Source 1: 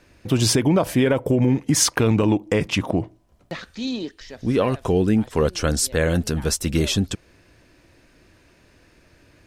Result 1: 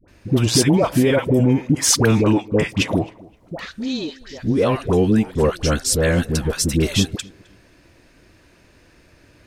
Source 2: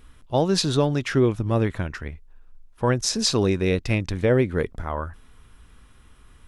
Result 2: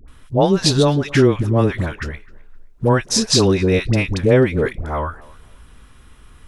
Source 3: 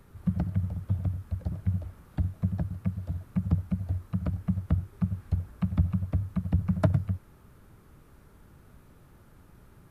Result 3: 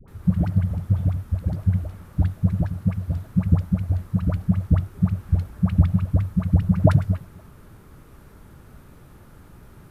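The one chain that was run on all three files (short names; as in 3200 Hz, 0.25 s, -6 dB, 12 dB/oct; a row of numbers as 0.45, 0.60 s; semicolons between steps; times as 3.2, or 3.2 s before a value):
dispersion highs, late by 81 ms, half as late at 740 Hz; tape echo 0.262 s, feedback 27%, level -22 dB, low-pass 2500 Hz; normalise peaks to -1.5 dBFS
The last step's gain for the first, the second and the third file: +2.5, +6.0, +8.0 dB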